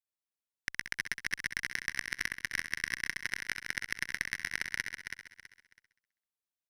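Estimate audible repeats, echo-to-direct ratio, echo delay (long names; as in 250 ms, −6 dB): 13, −4.0 dB, 65 ms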